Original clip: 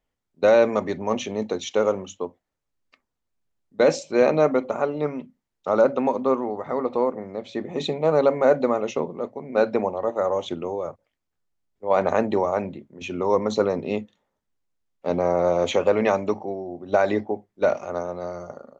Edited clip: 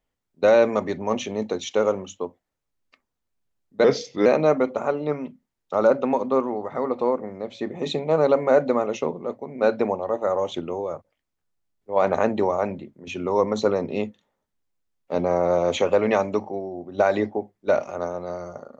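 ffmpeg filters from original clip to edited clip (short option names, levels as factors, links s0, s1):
-filter_complex "[0:a]asplit=3[s0][s1][s2];[s0]atrim=end=3.844[s3];[s1]atrim=start=3.84:end=4.2,asetpts=PTS-STARTPTS,asetrate=37926,aresample=44100,atrim=end_sample=18460,asetpts=PTS-STARTPTS[s4];[s2]atrim=start=4.196[s5];[s3][s4]acrossfade=d=0.004:c1=hsin:c2=hsin[s6];[s6][s5]acrossfade=d=0.004:c1=hsin:c2=hsin"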